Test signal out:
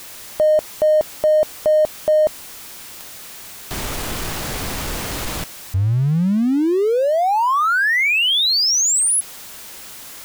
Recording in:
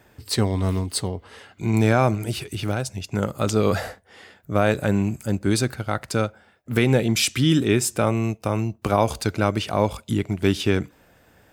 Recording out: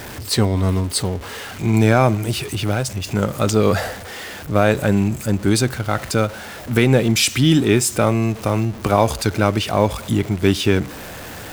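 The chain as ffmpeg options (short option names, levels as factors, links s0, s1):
-af "aeval=exprs='val(0)+0.5*0.0251*sgn(val(0))':c=same,volume=1.5"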